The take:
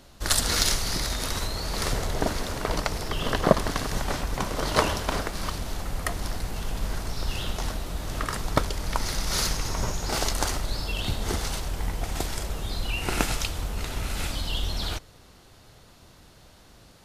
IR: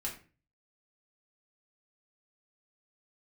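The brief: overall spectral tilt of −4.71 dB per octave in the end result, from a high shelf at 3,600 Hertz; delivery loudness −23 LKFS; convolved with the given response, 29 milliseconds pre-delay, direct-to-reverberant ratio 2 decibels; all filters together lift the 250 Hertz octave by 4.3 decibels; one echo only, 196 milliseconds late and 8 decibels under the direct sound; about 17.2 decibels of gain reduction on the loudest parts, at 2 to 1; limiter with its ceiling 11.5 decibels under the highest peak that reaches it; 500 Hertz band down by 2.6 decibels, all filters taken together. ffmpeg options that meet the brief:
-filter_complex "[0:a]equalizer=frequency=250:width_type=o:gain=7,equalizer=frequency=500:width_type=o:gain=-5,highshelf=frequency=3600:gain=-7.5,acompressor=threshold=-45dB:ratio=2,alimiter=level_in=5dB:limit=-24dB:level=0:latency=1,volume=-5dB,aecho=1:1:196:0.398,asplit=2[link_01][link_02];[1:a]atrim=start_sample=2205,adelay=29[link_03];[link_02][link_03]afir=irnorm=-1:irlink=0,volume=-3dB[link_04];[link_01][link_04]amix=inputs=2:normalize=0,volume=16dB"

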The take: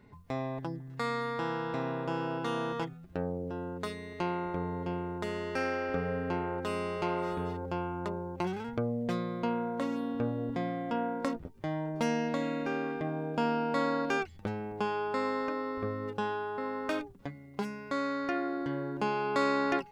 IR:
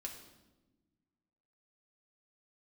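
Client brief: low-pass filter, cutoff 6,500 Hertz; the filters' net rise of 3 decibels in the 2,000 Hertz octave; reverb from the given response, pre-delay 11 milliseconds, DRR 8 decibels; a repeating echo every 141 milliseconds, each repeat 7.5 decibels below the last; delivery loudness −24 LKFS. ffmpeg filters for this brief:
-filter_complex "[0:a]lowpass=6500,equalizer=frequency=2000:width_type=o:gain=4,aecho=1:1:141|282|423|564|705:0.422|0.177|0.0744|0.0312|0.0131,asplit=2[link_01][link_02];[1:a]atrim=start_sample=2205,adelay=11[link_03];[link_02][link_03]afir=irnorm=-1:irlink=0,volume=-5.5dB[link_04];[link_01][link_04]amix=inputs=2:normalize=0,volume=8dB"

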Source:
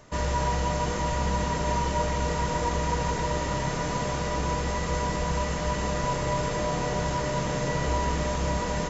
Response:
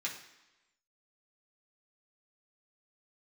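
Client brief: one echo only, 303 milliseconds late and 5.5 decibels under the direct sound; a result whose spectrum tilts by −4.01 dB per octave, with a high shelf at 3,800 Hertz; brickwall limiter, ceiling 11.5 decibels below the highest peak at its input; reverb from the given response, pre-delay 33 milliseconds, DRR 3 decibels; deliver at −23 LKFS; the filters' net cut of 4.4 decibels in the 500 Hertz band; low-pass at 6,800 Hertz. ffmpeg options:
-filter_complex "[0:a]lowpass=6800,equalizer=frequency=500:width_type=o:gain=-5.5,highshelf=frequency=3800:gain=6,alimiter=level_in=2.5dB:limit=-24dB:level=0:latency=1,volume=-2.5dB,aecho=1:1:303:0.531,asplit=2[link_01][link_02];[1:a]atrim=start_sample=2205,adelay=33[link_03];[link_02][link_03]afir=irnorm=-1:irlink=0,volume=-5.5dB[link_04];[link_01][link_04]amix=inputs=2:normalize=0,volume=10dB"

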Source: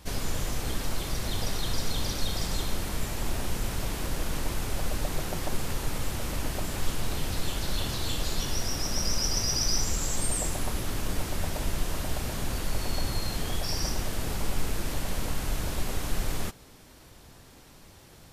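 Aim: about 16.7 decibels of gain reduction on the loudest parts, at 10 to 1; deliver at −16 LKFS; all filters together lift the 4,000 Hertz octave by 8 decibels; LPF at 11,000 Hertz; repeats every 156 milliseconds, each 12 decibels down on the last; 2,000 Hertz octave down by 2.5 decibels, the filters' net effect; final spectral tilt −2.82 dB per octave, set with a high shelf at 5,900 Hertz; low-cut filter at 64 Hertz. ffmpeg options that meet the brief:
ffmpeg -i in.wav -af "highpass=64,lowpass=11000,equalizer=frequency=2000:width_type=o:gain=-7,equalizer=frequency=4000:width_type=o:gain=8,highshelf=frequency=5900:gain=9,acompressor=threshold=-35dB:ratio=10,aecho=1:1:156|312|468:0.251|0.0628|0.0157,volume=20.5dB" out.wav

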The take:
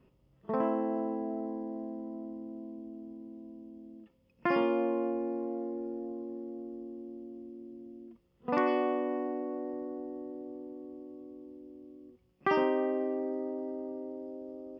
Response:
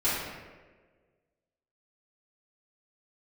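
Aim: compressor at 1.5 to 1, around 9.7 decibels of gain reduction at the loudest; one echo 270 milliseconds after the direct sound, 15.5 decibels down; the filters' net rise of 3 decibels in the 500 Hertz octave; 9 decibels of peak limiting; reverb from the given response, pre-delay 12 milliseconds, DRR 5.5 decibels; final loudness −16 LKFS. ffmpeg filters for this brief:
-filter_complex "[0:a]equalizer=frequency=500:width_type=o:gain=4,acompressor=threshold=-50dB:ratio=1.5,alimiter=level_in=7dB:limit=-24dB:level=0:latency=1,volume=-7dB,aecho=1:1:270:0.168,asplit=2[link_01][link_02];[1:a]atrim=start_sample=2205,adelay=12[link_03];[link_02][link_03]afir=irnorm=-1:irlink=0,volume=-17dB[link_04];[link_01][link_04]amix=inputs=2:normalize=0,volume=26dB"

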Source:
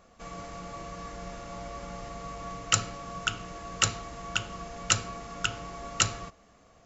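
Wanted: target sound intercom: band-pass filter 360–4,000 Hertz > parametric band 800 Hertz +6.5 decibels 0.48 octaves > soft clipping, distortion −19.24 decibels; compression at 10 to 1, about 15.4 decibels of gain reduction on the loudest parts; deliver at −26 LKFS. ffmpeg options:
ffmpeg -i in.wav -af "acompressor=threshold=-34dB:ratio=10,highpass=360,lowpass=4000,equalizer=frequency=800:width_type=o:width=0.48:gain=6.5,asoftclip=threshold=-26dB,volume=15.5dB" out.wav

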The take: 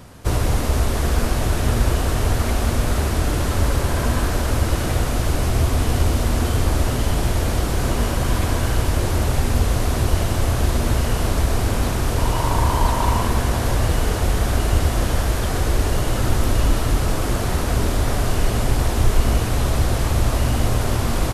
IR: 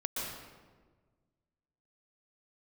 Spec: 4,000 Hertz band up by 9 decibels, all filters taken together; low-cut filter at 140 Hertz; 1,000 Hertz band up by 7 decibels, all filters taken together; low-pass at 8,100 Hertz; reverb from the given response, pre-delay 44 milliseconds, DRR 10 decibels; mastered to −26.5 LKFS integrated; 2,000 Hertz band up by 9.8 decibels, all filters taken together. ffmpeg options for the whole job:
-filter_complex "[0:a]highpass=140,lowpass=8100,equalizer=frequency=1000:width_type=o:gain=6,equalizer=frequency=2000:width_type=o:gain=8.5,equalizer=frequency=4000:width_type=o:gain=8.5,asplit=2[link_01][link_02];[1:a]atrim=start_sample=2205,adelay=44[link_03];[link_02][link_03]afir=irnorm=-1:irlink=0,volume=-14dB[link_04];[link_01][link_04]amix=inputs=2:normalize=0,volume=-7dB"

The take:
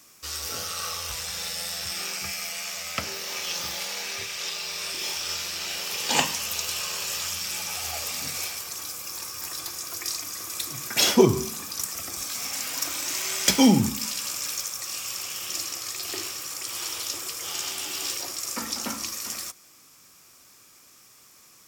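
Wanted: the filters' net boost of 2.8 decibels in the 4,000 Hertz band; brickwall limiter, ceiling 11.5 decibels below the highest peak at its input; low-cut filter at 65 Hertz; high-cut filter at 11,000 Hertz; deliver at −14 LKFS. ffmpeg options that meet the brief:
ffmpeg -i in.wav -af "highpass=65,lowpass=11000,equalizer=frequency=4000:width_type=o:gain=4,volume=14dB,alimiter=limit=-1dB:level=0:latency=1" out.wav

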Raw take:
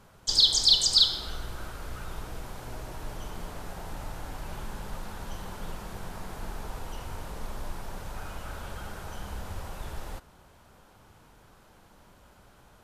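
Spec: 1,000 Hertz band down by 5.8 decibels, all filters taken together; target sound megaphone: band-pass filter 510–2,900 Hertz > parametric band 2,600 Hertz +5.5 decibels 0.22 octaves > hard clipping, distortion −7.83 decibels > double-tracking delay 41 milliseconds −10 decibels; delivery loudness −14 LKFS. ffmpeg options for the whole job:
ffmpeg -i in.wav -filter_complex "[0:a]highpass=510,lowpass=2900,equalizer=frequency=1000:width_type=o:gain=-7,equalizer=frequency=2600:width_type=o:width=0.22:gain=5.5,asoftclip=type=hard:threshold=-28dB,asplit=2[link_01][link_02];[link_02]adelay=41,volume=-10dB[link_03];[link_01][link_03]amix=inputs=2:normalize=0,volume=25.5dB" out.wav

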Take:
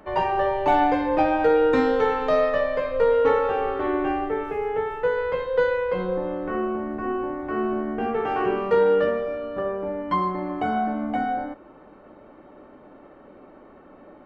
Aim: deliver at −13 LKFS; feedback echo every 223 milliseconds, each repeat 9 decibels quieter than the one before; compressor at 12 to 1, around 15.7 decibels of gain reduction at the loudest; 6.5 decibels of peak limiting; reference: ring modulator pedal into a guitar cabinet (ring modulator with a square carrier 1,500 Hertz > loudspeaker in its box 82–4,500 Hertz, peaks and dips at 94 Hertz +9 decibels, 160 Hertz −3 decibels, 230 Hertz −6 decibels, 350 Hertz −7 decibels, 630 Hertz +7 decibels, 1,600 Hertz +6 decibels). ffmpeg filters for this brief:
ffmpeg -i in.wav -af "acompressor=threshold=-31dB:ratio=12,alimiter=level_in=4.5dB:limit=-24dB:level=0:latency=1,volume=-4.5dB,aecho=1:1:223|446|669|892:0.355|0.124|0.0435|0.0152,aeval=exprs='val(0)*sgn(sin(2*PI*1500*n/s))':channel_layout=same,highpass=82,equalizer=frequency=94:width_type=q:width=4:gain=9,equalizer=frequency=160:width_type=q:width=4:gain=-3,equalizer=frequency=230:width_type=q:width=4:gain=-6,equalizer=frequency=350:width_type=q:width=4:gain=-7,equalizer=frequency=630:width_type=q:width=4:gain=7,equalizer=frequency=1600:width_type=q:width=4:gain=6,lowpass=frequency=4500:width=0.5412,lowpass=frequency=4500:width=1.3066,volume=20dB" out.wav

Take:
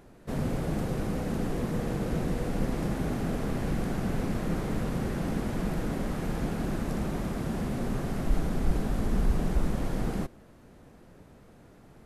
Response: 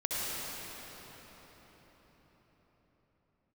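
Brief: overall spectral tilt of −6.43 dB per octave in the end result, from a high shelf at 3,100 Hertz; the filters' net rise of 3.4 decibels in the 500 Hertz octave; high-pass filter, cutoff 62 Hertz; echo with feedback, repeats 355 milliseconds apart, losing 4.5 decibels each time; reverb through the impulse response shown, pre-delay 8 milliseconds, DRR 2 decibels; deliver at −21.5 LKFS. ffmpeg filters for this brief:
-filter_complex "[0:a]highpass=62,equalizer=frequency=500:width_type=o:gain=4,highshelf=frequency=3100:gain=8,aecho=1:1:355|710|1065|1420|1775|2130|2485|2840|3195:0.596|0.357|0.214|0.129|0.0772|0.0463|0.0278|0.0167|0.01,asplit=2[link_01][link_02];[1:a]atrim=start_sample=2205,adelay=8[link_03];[link_02][link_03]afir=irnorm=-1:irlink=0,volume=-10dB[link_04];[link_01][link_04]amix=inputs=2:normalize=0,volume=5dB"

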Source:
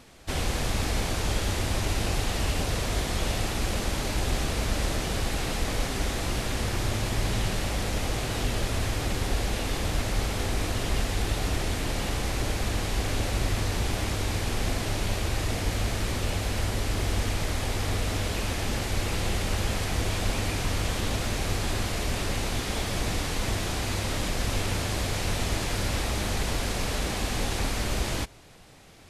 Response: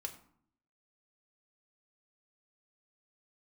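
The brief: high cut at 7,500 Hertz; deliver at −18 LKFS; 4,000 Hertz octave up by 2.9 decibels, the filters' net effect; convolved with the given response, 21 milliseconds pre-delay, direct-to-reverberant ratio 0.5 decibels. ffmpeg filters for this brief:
-filter_complex "[0:a]lowpass=7500,equalizer=frequency=4000:width_type=o:gain=4,asplit=2[link_01][link_02];[1:a]atrim=start_sample=2205,adelay=21[link_03];[link_02][link_03]afir=irnorm=-1:irlink=0,volume=1.5dB[link_04];[link_01][link_04]amix=inputs=2:normalize=0,volume=7dB"

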